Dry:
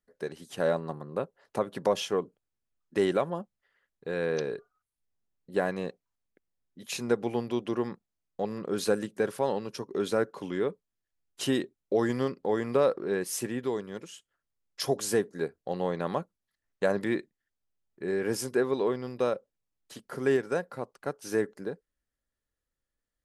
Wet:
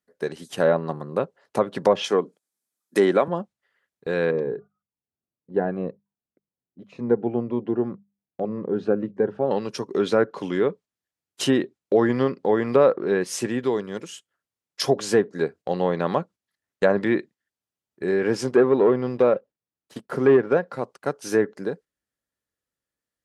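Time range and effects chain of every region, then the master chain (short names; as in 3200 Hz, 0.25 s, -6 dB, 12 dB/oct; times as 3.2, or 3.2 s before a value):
2.04–3.28 HPF 170 Hz 24 dB/oct + bell 11000 Hz +13.5 dB 1.7 oct + notch 2800 Hz, Q 9.3
4.31–9.51 Bessel low-pass 920 Hz + notches 50/100/150/200 Hz + cascading phaser falling 1.9 Hz
18.43–20.57 high shelf 2200 Hz -9 dB + sample leveller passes 1
whole clip: treble ducked by the level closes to 2500 Hz, closed at -22.5 dBFS; HPF 99 Hz; gate -49 dBFS, range -6 dB; gain +7.5 dB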